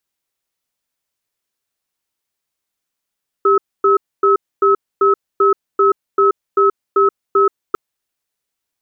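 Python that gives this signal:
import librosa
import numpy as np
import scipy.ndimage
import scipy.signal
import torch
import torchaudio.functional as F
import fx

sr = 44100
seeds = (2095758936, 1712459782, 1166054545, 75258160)

y = fx.cadence(sr, length_s=4.3, low_hz=396.0, high_hz=1290.0, on_s=0.13, off_s=0.26, level_db=-11.5)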